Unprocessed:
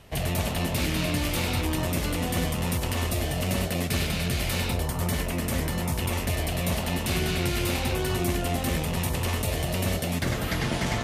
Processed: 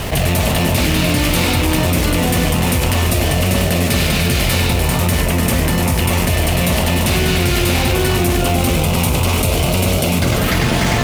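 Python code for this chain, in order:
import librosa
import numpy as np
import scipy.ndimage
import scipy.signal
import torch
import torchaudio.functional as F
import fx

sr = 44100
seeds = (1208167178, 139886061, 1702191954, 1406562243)

p1 = fx.rattle_buzz(x, sr, strikes_db=-26.0, level_db=-28.0)
p2 = fx.quant_companded(p1, sr, bits=4)
p3 = p1 + (p2 * librosa.db_to_amplitude(-3.5))
p4 = fx.notch(p3, sr, hz=1800.0, q=5.3, at=(8.37, 10.37))
p5 = p4 + 10.0 ** (-9.0 / 20.0) * np.pad(p4, (int(343 * sr / 1000.0), 0))[:len(p4)]
p6 = fx.env_flatten(p5, sr, amount_pct=70)
y = p6 * librosa.db_to_amplitude(4.0)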